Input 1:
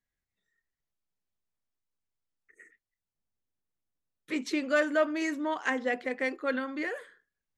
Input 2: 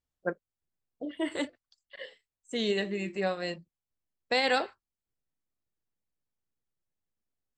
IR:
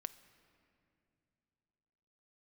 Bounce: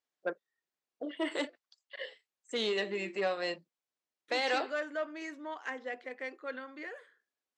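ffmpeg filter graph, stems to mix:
-filter_complex "[0:a]volume=-8.5dB[a];[1:a]alimiter=limit=-20dB:level=0:latency=1:release=173,volume=2dB[b];[a][b]amix=inputs=2:normalize=0,asoftclip=type=tanh:threshold=-22dB,highpass=350,lowpass=6.7k"

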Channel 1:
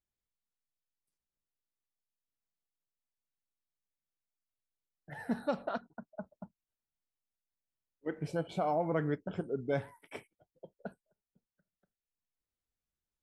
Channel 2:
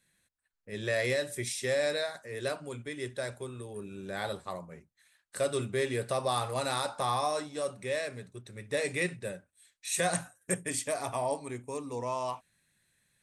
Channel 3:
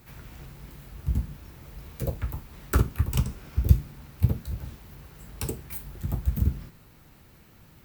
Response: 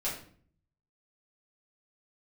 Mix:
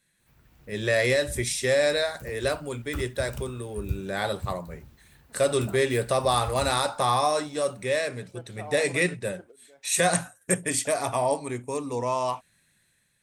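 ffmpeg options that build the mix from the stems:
-filter_complex "[0:a]aeval=exprs='sgn(val(0))*max(abs(val(0))-0.00133,0)':c=same,highpass=340,volume=-12dB[a];[1:a]volume=2dB,asplit=2[b][c];[2:a]adelay=200,volume=-17dB[d];[c]apad=whole_len=583152[e];[a][e]sidechaingate=range=-16dB:threshold=-56dB:ratio=16:detection=peak[f];[f][b][d]amix=inputs=3:normalize=0,dynaudnorm=f=140:g=7:m=5dB"

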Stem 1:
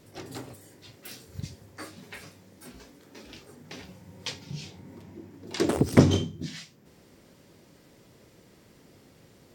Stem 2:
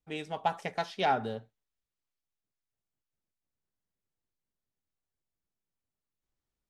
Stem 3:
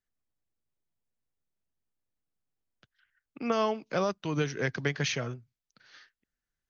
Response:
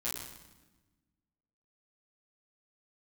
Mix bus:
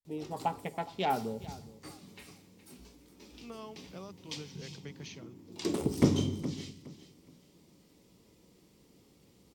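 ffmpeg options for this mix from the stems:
-filter_complex "[0:a]adelay=50,volume=-7.5dB,asplit=3[a][b][c];[b]volume=-8.5dB[d];[c]volume=-12.5dB[e];[1:a]afwtdn=0.0112,highshelf=f=5.2k:g=-8.5,volume=1dB,asplit=3[f][g][h];[g]volume=-19dB[i];[h]volume=-18dB[j];[2:a]volume=-15dB[k];[3:a]atrim=start_sample=2205[l];[d][i]amix=inputs=2:normalize=0[m];[m][l]afir=irnorm=-1:irlink=0[n];[e][j]amix=inputs=2:normalize=0,aecho=0:1:416|832|1248|1664:1|0.26|0.0676|0.0176[o];[a][f][k][n][o]amix=inputs=5:normalize=0,equalizer=f=100:t=o:w=0.67:g=-5,equalizer=f=630:t=o:w=0.67:g=-6,equalizer=f=1.6k:t=o:w=0.67:g=-11"

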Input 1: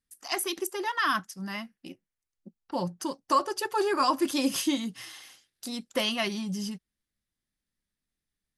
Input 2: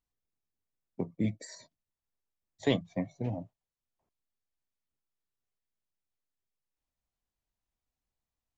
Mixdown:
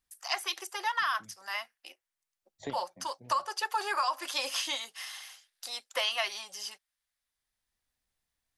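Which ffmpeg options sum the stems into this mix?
-filter_complex "[0:a]acrossover=split=6100[a][b];[b]acompressor=threshold=-46dB:ratio=4:attack=1:release=60[c];[a][c]amix=inputs=2:normalize=0,highpass=f=650:w=0.5412,highpass=f=650:w=1.3066,acompressor=threshold=-28dB:ratio=10,volume=2.5dB,asplit=2[d][e];[1:a]alimiter=level_in=0.5dB:limit=-24dB:level=0:latency=1:release=230,volume=-0.5dB,volume=1.5dB[f];[e]apad=whole_len=378119[g];[f][g]sidechaincompress=threshold=-56dB:ratio=5:attack=16:release=744[h];[d][h]amix=inputs=2:normalize=0"

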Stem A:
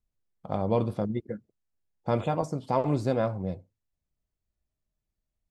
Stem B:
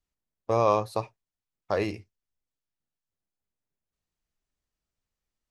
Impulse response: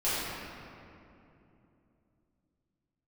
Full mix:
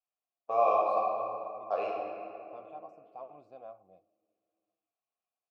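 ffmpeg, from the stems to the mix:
-filter_complex "[0:a]adelay=450,volume=-11dB[a];[1:a]lowshelf=f=130:g=-10,volume=0dB,asplit=2[b][c];[c]volume=-5.5dB[d];[2:a]atrim=start_sample=2205[e];[d][e]afir=irnorm=-1:irlink=0[f];[a][b][f]amix=inputs=3:normalize=0,asplit=3[g][h][i];[g]bandpass=f=730:t=q:w=8,volume=0dB[j];[h]bandpass=f=1.09k:t=q:w=8,volume=-6dB[k];[i]bandpass=f=2.44k:t=q:w=8,volume=-9dB[l];[j][k][l]amix=inputs=3:normalize=0"

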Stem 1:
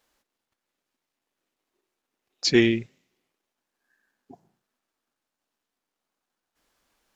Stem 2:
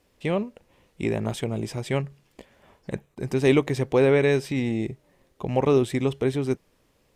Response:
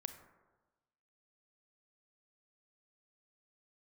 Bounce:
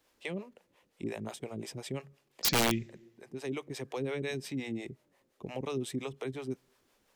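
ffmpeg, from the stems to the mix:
-filter_complex "[0:a]volume=-3dB,asplit=3[a][b][c];[b]volume=-13.5dB[d];[1:a]acrossover=split=420[e][f];[e]aeval=exprs='val(0)*(1-1/2+1/2*cos(2*PI*5.7*n/s))':c=same[g];[f]aeval=exprs='val(0)*(1-1/2-1/2*cos(2*PI*5.7*n/s))':c=same[h];[g][h]amix=inputs=2:normalize=0,highpass=f=310:p=1,volume=-2.5dB,asplit=2[i][j];[j]volume=-24dB[k];[c]apad=whole_len=315665[l];[i][l]sidechaincompress=threshold=-30dB:ratio=10:attack=16:release=1350[m];[2:a]atrim=start_sample=2205[n];[d][k]amix=inputs=2:normalize=0[o];[o][n]afir=irnorm=-1:irlink=0[p];[a][m][p]amix=inputs=3:normalize=0,acrossover=split=280|3000[q][r][s];[r]acompressor=threshold=-38dB:ratio=5[t];[q][t][s]amix=inputs=3:normalize=0,aeval=exprs='(mod(10*val(0)+1,2)-1)/10':c=same"

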